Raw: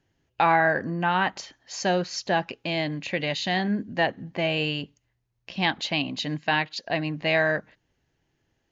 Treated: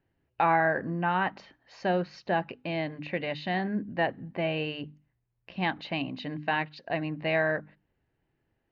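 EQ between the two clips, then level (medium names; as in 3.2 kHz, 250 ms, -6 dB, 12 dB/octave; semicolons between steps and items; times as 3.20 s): distance through air 340 m; hum notches 50/100/150/200/250/300 Hz; band-stop 3.3 kHz, Q 13; -2.0 dB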